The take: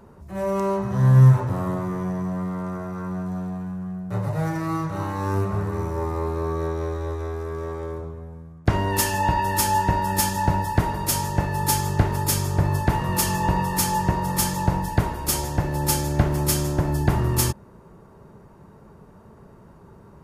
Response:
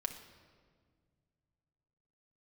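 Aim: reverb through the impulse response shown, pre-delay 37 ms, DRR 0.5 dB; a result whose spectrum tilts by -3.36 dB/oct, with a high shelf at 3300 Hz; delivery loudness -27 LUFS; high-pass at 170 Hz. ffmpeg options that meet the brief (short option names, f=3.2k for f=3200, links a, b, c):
-filter_complex "[0:a]highpass=170,highshelf=f=3.3k:g=5.5,asplit=2[a][b];[1:a]atrim=start_sample=2205,adelay=37[c];[b][c]afir=irnorm=-1:irlink=0,volume=-1dB[d];[a][d]amix=inputs=2:normalize=0,volume=-6dB"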